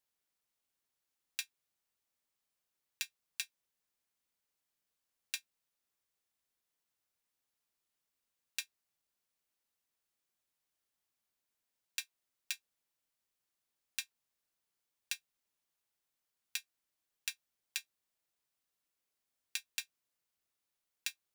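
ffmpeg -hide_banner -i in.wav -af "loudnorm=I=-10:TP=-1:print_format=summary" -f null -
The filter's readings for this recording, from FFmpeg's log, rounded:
Input Integrated:    -43.3 LUFS
Input True Peak:     -13.7 dBTP
Input LRA:             6.0 LU
Input Threshold:     -53.7 LUFS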